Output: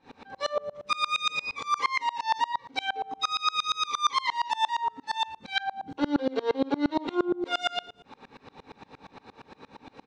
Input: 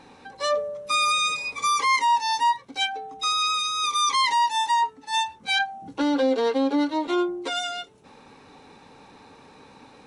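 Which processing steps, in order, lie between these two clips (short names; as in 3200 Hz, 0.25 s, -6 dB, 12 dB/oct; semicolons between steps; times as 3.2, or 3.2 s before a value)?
LPF 4600 Hz 12 dB/oct; limiter -21.5 dBFS, peak gain reduction 8.5 dB; doubler 45 ms -9 dB; feedback echo 0.105 s, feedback 46%, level -20.5 dB; dB-ramp tremolo swelling 8.6 Hz, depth 28 dB; gain +7 dB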